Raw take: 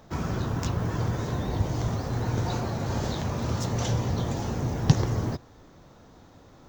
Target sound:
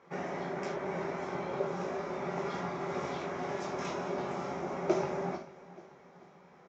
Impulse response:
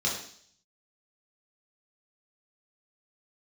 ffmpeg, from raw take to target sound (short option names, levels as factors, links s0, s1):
-filter_complex "[0:a]flanger=delay=2.2:depth=2.1:regen=-76:speed=1.4:shape=triangular,aeval=exprs='val(0)*sin(2*PI*490*n/s)':c=same,highpass=150,equalizer=f=150:t=q:w=4:g=9,equalizer=f=320:t=q:w=4:g=-8,equalizer=f=600:t=q:w=4:g=-8,equalizer=f=2200:t=q:w=4:g=7,equalizer=f=4300:t=q:w=4:g=-8,lowpass=f=5600:w=0.5412,lowpass=f=5600:w=1.3066,aecho=1:1:440|880|1320|1760:0.112|0.0516|0.0237|0.0109,asplit=2[s0][s1];[1:a]atrim=start_sample=2205,atrim=end_sample=4410[s2];[s1][s2]afir=irnorm=-1:irlink=0,volume=0.335[s3];[s0][s3]amix=inputs=2:normalize=0"